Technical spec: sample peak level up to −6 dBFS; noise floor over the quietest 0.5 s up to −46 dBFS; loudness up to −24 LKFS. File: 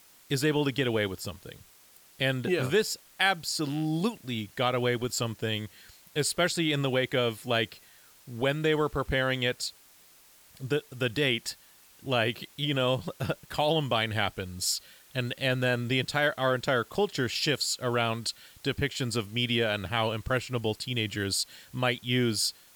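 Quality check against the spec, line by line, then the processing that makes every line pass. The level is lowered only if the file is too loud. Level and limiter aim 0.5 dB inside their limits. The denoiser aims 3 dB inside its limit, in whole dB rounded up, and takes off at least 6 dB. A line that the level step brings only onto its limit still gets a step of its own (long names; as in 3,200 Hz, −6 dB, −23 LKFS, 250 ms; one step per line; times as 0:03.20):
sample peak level −10.0 dBFS: in spec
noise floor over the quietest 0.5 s −57 dBFS: in spec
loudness −29.0 LKFS: in spec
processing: no processing needed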